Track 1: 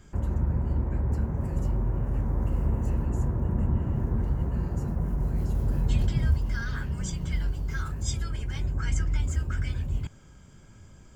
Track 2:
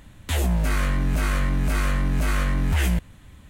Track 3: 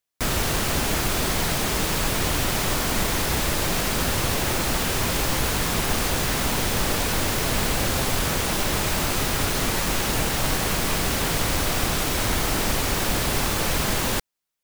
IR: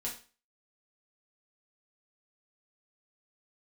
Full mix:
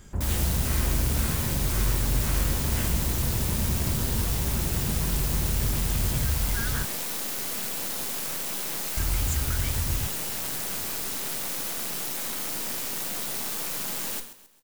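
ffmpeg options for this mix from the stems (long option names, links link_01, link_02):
-filter_complex "[0:a]alimiter=limit=-21.5dB:level=0:latency=1,volume=1.5dB,asplit=3[link_01][link_02][link_03];[link_01]atrim=end=6.85,asetpts=PTS-STARTPTS,afade=type=out:start_time=6.846:duration=0.004:curve=hsin[link_04];[link_02]atrim=start=6.85:end=8.97,asetpts=PTS-STARTPTS,volume=0[link_05];[link_03]atrim=start=8.97,asetpts=PTS-STARTPTS,afade=type=in:duration=0.004:curve=hsin[link_06];[link_04][link_05][link_06]concat=n=3:v=0:a=1[link_07];[1:a]volume=-11dB[link_08];[2:a]highpass=frequency=150:width=0.5412,highpass=frequency=150:width=1.3066,aeval=exprs='max(val(0),0)':channel_layout=same,volume=-12dB,asplit=3[link_09][link_10][link_11];[link_10]volume=-3.5dB[link_12];[link_11]volume=-9.5dB[link_13];[3:a]atrim=start_sample=2205[link_14];[link_12][link_14]afir=irnorm=-1:irlink=0[link_15];[link_13]aecho=0:1:133|266|399|532|665:1|0.39|0.152|0.0593|0.0231[link_16];[link_07][link_08][link_09][link_15][link_16]amix=inputs=5:normalize=0,crystalizer=i=1.5:c=0"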